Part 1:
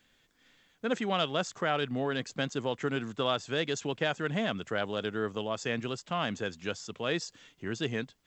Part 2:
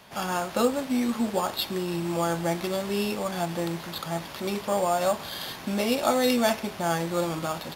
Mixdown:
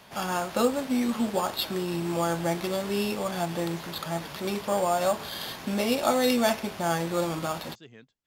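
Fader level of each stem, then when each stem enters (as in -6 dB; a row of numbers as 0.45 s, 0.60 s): -17.0 dB, -0.5 dB; 0.00 s, 0.00 s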